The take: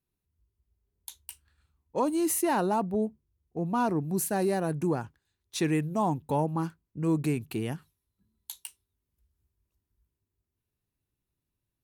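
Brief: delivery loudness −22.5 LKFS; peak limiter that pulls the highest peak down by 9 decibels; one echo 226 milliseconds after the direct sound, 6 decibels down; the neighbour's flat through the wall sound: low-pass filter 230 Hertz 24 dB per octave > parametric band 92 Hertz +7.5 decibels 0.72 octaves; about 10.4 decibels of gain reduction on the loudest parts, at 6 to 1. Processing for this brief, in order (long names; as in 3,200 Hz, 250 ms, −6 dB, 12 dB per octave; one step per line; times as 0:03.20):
downward compressor 6 to 1, threshold −34 dBFS
brickwall limiter −30.5 dBFS
low-pass filter 230 Hz 24 dB per octave
parametric band 92 Hz +7.5 dB 0.72 octaves
single-tap delay 226 ms −6 dB
level +21 dB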